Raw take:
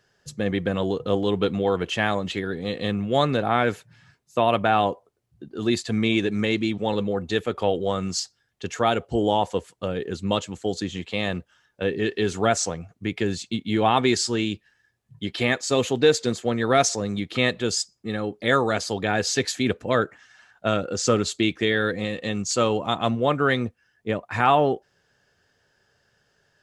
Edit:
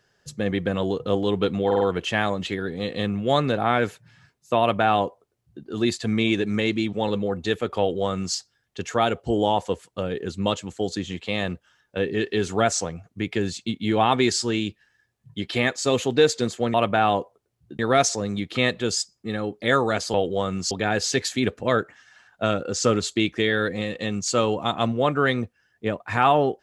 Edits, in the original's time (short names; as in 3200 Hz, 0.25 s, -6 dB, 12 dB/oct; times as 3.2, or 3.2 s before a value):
1.66 stutter 0.05 s, 4 plays
4.45–5.5 copy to 16.59
7.64–8.21 copy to 18.94